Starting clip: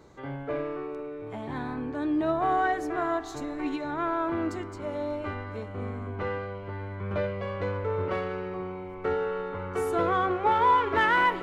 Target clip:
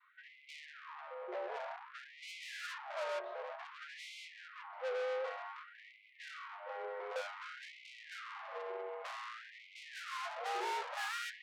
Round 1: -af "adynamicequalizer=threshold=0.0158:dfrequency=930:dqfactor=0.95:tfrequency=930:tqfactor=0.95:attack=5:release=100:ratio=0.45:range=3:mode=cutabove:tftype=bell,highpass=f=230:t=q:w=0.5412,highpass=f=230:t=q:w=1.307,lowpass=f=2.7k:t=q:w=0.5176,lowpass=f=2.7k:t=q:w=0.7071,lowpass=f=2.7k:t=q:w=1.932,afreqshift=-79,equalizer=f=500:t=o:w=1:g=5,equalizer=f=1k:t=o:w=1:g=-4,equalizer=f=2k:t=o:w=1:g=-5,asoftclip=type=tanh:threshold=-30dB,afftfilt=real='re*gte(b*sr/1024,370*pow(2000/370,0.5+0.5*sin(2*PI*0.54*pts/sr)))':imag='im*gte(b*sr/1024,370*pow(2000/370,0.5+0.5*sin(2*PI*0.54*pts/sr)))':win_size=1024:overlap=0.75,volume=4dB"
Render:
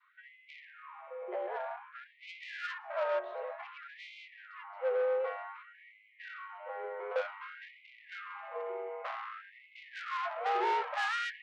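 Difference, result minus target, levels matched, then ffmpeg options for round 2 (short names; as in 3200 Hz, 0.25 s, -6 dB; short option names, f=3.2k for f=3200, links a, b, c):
soft clip: distortion -5 dB
-af "adynamicequalizer=threshold=0.0158:dfrequency=930:dqfactor=0.95:tfrequency=930:tqfactor=0.95:attack=5:release=100:ratio=0.45:range=3:mode=cutabove:tftype=bell,highpass=f=230:t=q:w=0.5412,highpass=f=230:t=q:w=1.307,lowpass=f=2.7k:t=q:w=0.5176,lowpass=f=2.7k:t=q:w=0.7071,lowpass=f=2.7k:t=q:w=1.932,afreqshift=-79,equalizer=f=500:t=o:w=1:g=5,equalizer=f=1k:t=o:w=1:g=-4,equalizer=f=2k:t=o:w=1:g=-5,asoftclip=type=tanh:threshold=-39.5dB,afftfilt=real='re*gte(b*sr/1024,370*pow(2000/370,0.5+0.5*sin(2*PI*0.54*pts/sr)))':imag='im*gte(b*sr/1024,370*pow(2000/370,0.5+0.5*sin(2*PI*0.54*pts/sr)))':win_size=1024:overlap=0.75,volume=4dB"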